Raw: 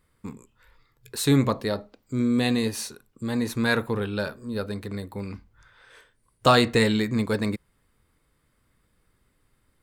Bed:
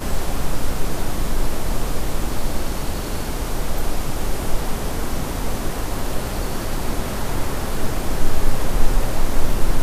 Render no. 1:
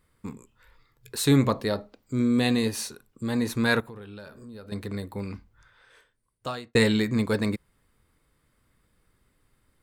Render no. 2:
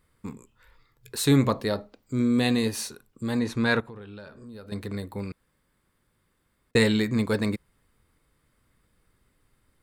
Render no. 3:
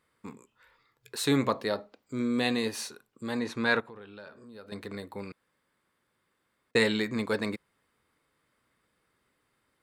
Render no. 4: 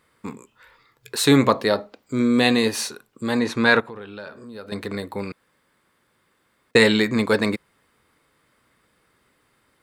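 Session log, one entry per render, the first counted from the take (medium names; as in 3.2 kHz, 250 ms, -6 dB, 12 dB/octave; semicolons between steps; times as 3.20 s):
3.80–4.72 s: compression 4:1, threshold -42 dBFS; 5.28–6.75 s: fade out
3.39–4.46 s: distance through air 61 m; 5.32–6.71 s: room tone
high-pass 430 Hz 6 dB/octave; treble shelf 6.5 kHz -8.5 dB
trim +10 dB; peak limiter -1 dBFS, peak gain reduction 1.5 dB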